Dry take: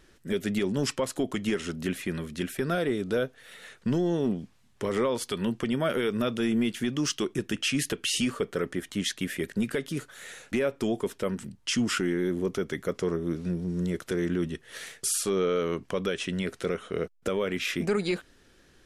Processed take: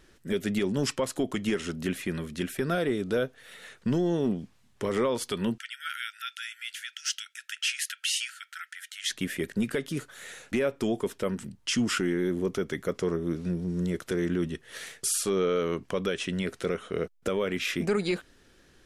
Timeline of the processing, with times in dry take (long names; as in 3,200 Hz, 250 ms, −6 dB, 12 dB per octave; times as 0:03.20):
0:05.58–0:09.09: linear-phase brick-wall high-pass 1,300 Hz